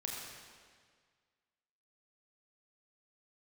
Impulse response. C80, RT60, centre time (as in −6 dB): 1.5 dB, 1.8 s, 98 ms